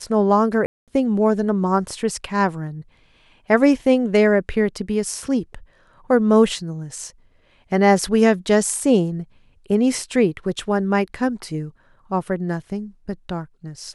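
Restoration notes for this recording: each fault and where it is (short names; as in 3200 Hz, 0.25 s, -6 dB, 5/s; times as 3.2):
0.66–0.88 gap 0.217 s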